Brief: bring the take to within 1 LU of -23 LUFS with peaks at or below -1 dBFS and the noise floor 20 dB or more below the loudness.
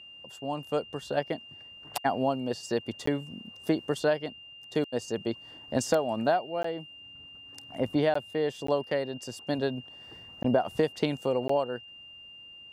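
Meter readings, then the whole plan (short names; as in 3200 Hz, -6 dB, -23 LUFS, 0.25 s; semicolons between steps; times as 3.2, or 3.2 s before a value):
dropouts 6; longest dropout 14 ms; steady tone 2800 Hz; tone level -46 dBFS; loudness -30.5 LUFS; peak -12.0 dBFS; loudness target -23.0 LUFS
-> interpolate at 3.06/6.63/8.14/8.67/10.43/11.48, 14 ms; notch 2800 Hz, Q 30; gain +7.5 dB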